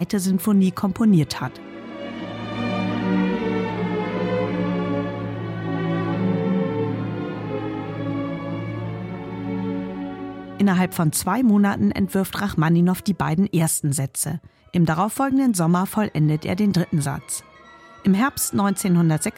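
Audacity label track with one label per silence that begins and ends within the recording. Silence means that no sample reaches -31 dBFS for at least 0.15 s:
14.370000	14.740000	silence
17.390000	18.050000	silence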